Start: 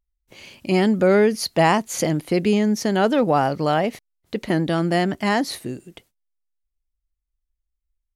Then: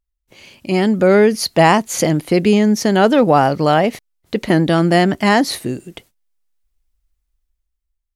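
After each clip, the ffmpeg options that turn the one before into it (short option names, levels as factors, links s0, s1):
-af "dynaudnorm=f=140:g=13:m=3.98"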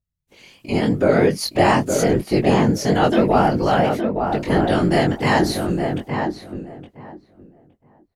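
-filter_complex "[0:a]afftfilt=real='hypot(re,im)*cos(2*PI*random(0))':imag='hypot(re,im)*sin(2*PI*random(1))':win_size=512:overlap=0.75,flanger=delay=19.5:depth=4.2:speed=3,asplit=2[s0][s1];[s1]adelay=866,lowpass=f=1400:p=1,volume=0.596,asplit=2[s2][s3];[s3]adelay=866,lowpass=f=1400:p=1,volume=0.18,asplit=2[s4][s5];[s5]adelay=866,lowpass=f=1400:p=1,volume=0.18[s6];[s0][s2][s4][s6]amix=inputs=4:normalize=0,volume=1.68"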